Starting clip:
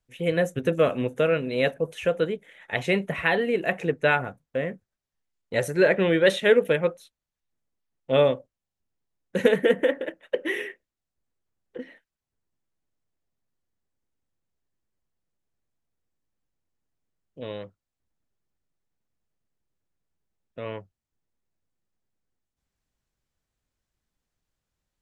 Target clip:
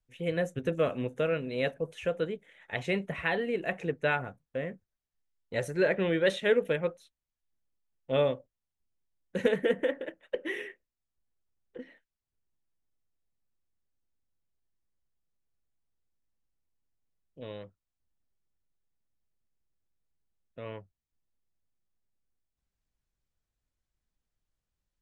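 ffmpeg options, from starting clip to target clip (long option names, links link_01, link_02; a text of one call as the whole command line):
ffmpeg -i in.wav -af "lowpass=10000,lowshelf=frequency=71:gain=8.5,volume=-7dB" out.wav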